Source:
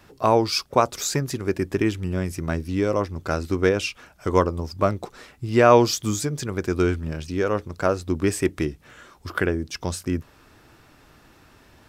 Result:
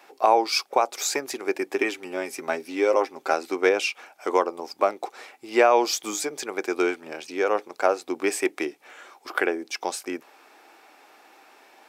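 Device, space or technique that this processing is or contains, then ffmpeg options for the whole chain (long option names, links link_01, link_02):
laptop speaker: -filter_complex "[0:a]asettb=1/sr,asplit=3[link_01][link_02][link_03];[link_01]atrim=end=1.764[link_04];[link_02]atrim=start=1.76:end=3.33,asetpts=PTS-STARTPTS,afade=type=in:duration=0.004:curve=qsin,afade=type=out:start_time=1.566:duration=0.004:curve=qsin,aecho=1:1:7.5:0.5,atrim=end_sample=69237[link_05];[link_03]atrim=start=3.326[link_06];[link_04][link_05]acrossfade=duration=0.004:curve1=hsin:curve2=qsin[link_07];[link_07][link_06]acrossfade=duration=0.004:curve1=qsin:curve2=hsin,highpass=frequency=340:width=0.5412,highpass=frequency=340:width=1.3066,equalizer=frequency=790:width_type=o:width=0.33:gain=10,equalizer=frequency=2300:width_type=o:width=0.25:gain=7,alimiter=limit=-6.5dB:level=0:latency=1:release=258"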